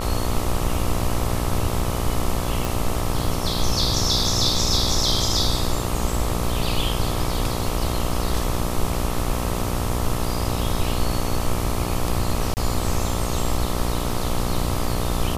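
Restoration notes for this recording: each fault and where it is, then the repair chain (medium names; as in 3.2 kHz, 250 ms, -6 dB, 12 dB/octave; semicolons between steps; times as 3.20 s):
buzz 60 Hz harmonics 22 -27 dBFS
2.65 s: pop
12.54–12.57 s: dropout 29 ms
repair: de-click; de-hum 60 Hz, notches 22; interpolate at 12.54 s, 29 ms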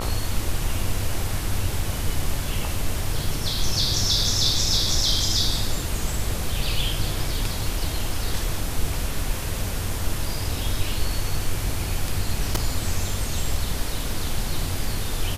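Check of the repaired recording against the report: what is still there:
nothing left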